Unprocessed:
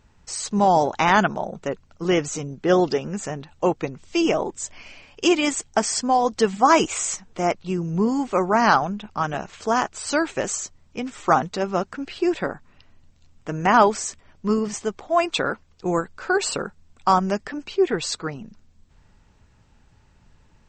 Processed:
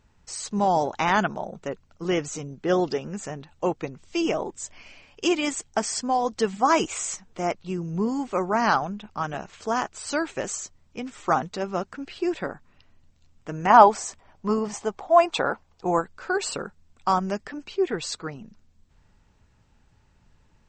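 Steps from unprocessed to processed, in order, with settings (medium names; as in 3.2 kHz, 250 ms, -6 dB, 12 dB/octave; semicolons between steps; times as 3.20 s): 13.70–16.02 s: peaking EQ 810 Hz +10.5 dB 1 oct; trim -4.5 dB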